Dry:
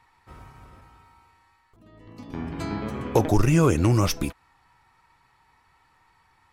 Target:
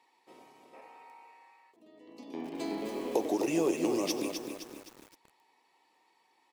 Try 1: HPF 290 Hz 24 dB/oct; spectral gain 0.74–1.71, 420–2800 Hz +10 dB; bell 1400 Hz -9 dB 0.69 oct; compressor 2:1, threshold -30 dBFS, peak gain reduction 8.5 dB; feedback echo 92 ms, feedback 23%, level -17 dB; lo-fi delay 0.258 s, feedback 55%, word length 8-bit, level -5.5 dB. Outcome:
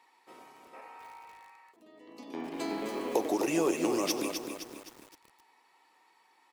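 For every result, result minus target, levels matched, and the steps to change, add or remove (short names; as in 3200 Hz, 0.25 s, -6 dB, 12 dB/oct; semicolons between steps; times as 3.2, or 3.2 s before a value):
1000 Hz band +2.5 dB; 8000 Hz band +2.5 dB
change: bell 1400 Hz -20.5 dB 0.69 oct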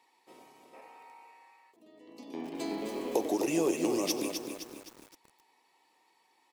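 8000 Hz band +3.0 dB
add after compressor: high shelf 6800 Hz -6.5 dB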